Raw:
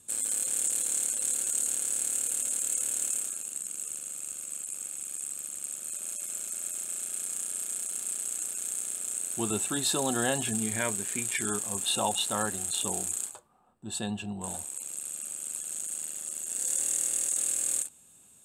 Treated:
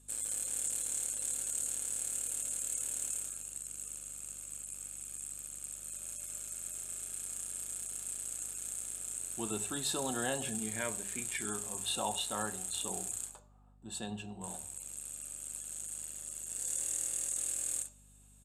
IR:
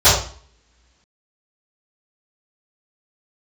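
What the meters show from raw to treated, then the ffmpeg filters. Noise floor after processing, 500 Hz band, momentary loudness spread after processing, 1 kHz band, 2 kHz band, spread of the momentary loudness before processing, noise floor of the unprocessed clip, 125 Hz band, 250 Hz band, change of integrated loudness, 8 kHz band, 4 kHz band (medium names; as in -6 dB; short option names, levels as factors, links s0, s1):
-60 dBFS, -6.5 dB, 9 LU, -6.0 dB, -6.5 dB, 9 LU, -57 dBFS, -7.5 dB, -7.5 dB, -7.0 dB, -7.0 dB, -6.5 dB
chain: -filter_complex "[0:a]highpass=f=94:w=0.5412,highpass=f=94:w=1.3066,bandreject=f=50:t=h:w=6,bandreject=f=100:t=h:w=6,bandreject=f=150:t=h:w=6,bandreject=f=200:t=h:w=6,aresample=32000,aresample=44100,asplit=2[s0][s1];[1:a]atrim=start_sample=2205[s2];[s1][s2]afir=irnorm=-1:irlink=0,volume=0.0133[s3];[s0][s3]amix=inputs=2:normalize=0,aeval=exprs='val(0)+0.002*(sin(2*PI*50*n/s)+sin(2*PI*2*50*n/s)/2+sin(2*PI*3*50*n/s)/3+sin(2*PI*4*50*n/s)/4+sin(2*PI*5*50*n/s)/5)':c=same,volume=0.447"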